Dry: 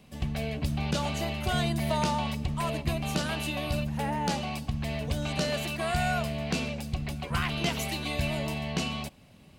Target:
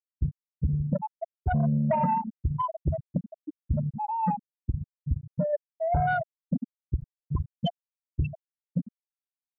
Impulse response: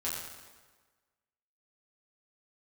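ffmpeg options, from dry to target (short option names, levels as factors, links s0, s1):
-af "afftfilt=real='re*gte(hypot(re,im),0.224)':imag='im*gte(hypot(re,im),0.224)':win_size=1024:overlap=0.75,aeval=exprs='0.119*sin(PI/2*1.58*val(0)/0.119)':c=same"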